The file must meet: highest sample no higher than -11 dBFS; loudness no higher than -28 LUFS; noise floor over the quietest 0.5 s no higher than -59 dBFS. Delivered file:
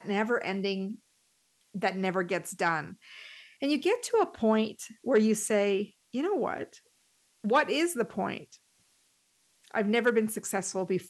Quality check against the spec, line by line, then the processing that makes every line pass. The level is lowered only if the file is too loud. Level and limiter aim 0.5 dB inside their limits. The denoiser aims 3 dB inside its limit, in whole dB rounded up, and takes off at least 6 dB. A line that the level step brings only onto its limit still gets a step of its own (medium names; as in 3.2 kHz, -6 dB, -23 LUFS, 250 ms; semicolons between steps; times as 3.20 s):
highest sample -13.5 dBFS: pass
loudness -29.5 LUFS: pass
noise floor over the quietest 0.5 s -70 dBFS: pass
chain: none needed